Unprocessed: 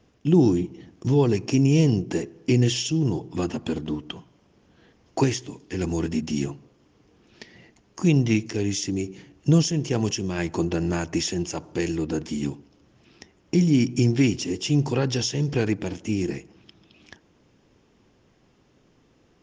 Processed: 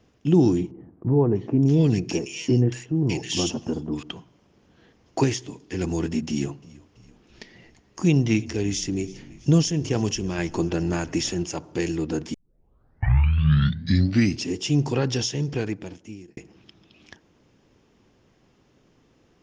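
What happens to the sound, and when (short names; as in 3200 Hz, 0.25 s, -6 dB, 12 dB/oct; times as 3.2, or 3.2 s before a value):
0.71–4.03 bands offset in time lows, highs 0.61 s, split 1400 Hz
6.29–11.44 frequency-shifting echo 0.332 s, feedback 61%, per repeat -54 Hz, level -21.5 dB
12.34 tape start 2.17 s
15.21–16.37 fade out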